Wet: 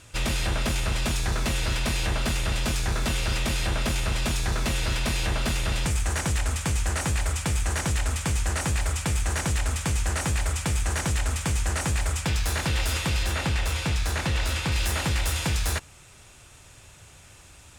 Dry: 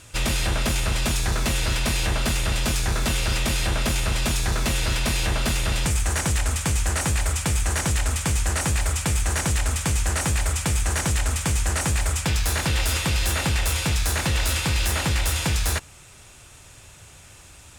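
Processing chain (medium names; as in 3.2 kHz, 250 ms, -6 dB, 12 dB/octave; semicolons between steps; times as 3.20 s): treble shelf 7.6 kHz -5 dB, from 13.23 s -11.5 dB, from 14.72 s -3 dB; trim -2.5 dB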